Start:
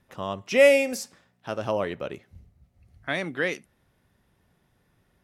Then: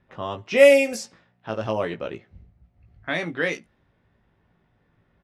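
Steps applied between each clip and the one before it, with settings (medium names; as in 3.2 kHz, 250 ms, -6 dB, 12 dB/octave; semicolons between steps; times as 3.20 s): level-controlled noise filter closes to 2.7 kHz, open at -19 dBFS; doubling 18 ms -5.5 dB; trim +1 dB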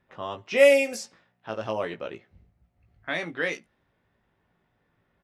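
bass shelf 250 Hz -7 dB; trim -2.5 dB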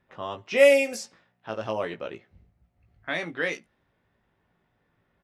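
no audible change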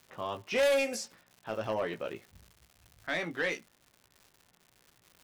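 saturation -21.5 dBFS, distortion -6 dB; crackle 230 per s -44 dBFS; trim -1.5 dB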